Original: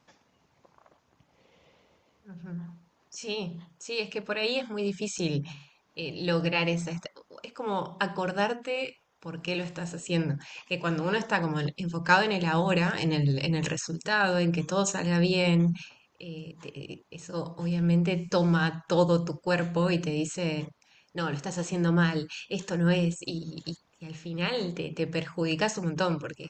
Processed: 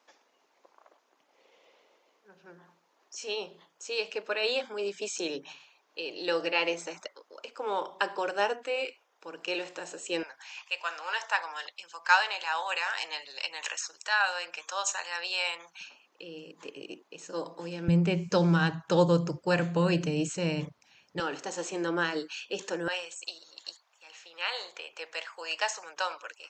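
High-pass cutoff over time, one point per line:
high-pass 24 dB/octave
340 Hz
from 10.23 s 780 Hz
from 15.81 s 260 Hz
from 17.88 s 69 Hz
from 21.20 s 290 Hz
from 22.88 s 700 Hz

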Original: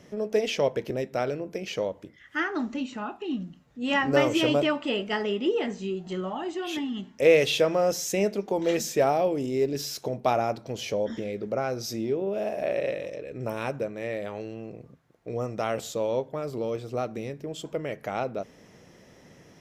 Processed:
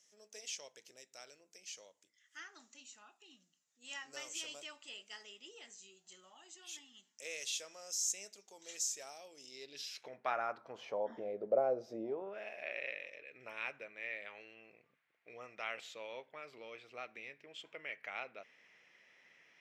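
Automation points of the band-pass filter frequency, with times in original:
band-pass filter, Q 2.7
9.28 s 7.1 kHz
10.13 s 1.9 kHz
11.52 s 580 Hz
12.02 s 580 Hz
12.46 s 2.3 kHz

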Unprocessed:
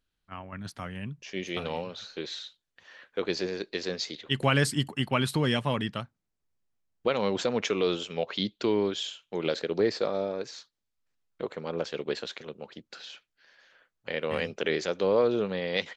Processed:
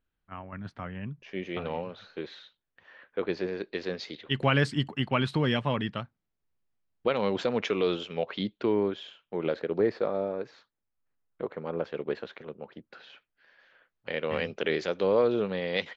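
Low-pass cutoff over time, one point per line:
3.32 s 2.2 kHz
4.38 s 3.6 kHz
8.00 s 3.6 kHz
8.75 s 1.9 kHz
12.85 s 1.9 kHz
14.21 s 4.1 kHz

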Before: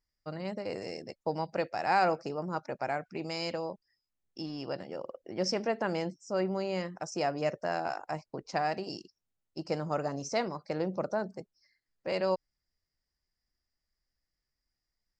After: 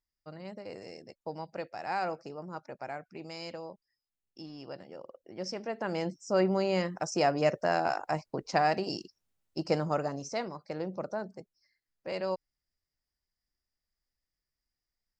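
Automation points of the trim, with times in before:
5.63 s -6.5 dB
6.23 s +4.5 dB
9.75 s +4.5 dB
10.34 s -3.5 dB

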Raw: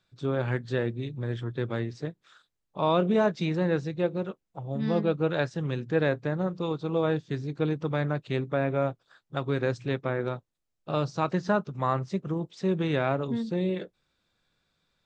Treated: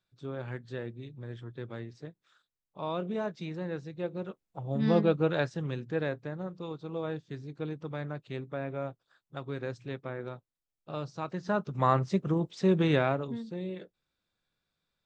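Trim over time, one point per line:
3.85 s -10 dB
4.90 s +2 dB
6.33 s -9 dB
11.35 s -9 dB
11.79 s +2 dB
12.93 s +2 dB
13.43 s -9 dB

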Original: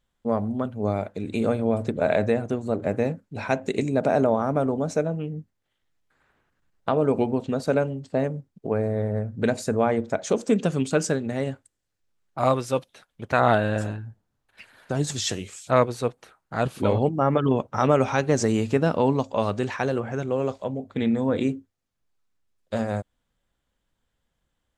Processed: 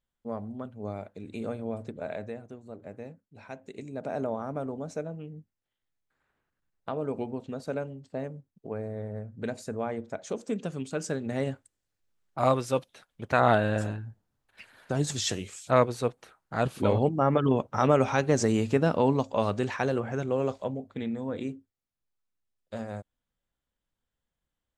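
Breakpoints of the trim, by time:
1.73 s -11 dB
2.54 s -18 dB
3.69 s -18 dB
4.24 s -10.5 dB
10.95 s -10.5 dB
11.36 s -2.5 dB
20.66 s -2.5 dB
21.08 s -10 dB

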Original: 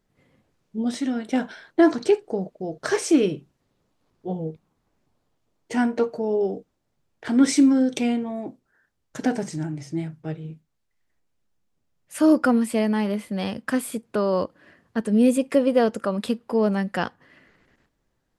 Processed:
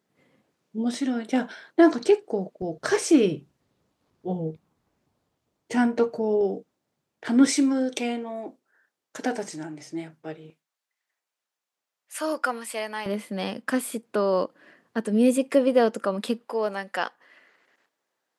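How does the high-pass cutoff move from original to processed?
180 Hz
from 2.62 s 57 Hz
from 6.41 s 150 Hz
from 7.47 s 350 Hz
from 10.50 s 780 Hz
from 13.06 s 230 Hz
from 16.45 s 530 Hz

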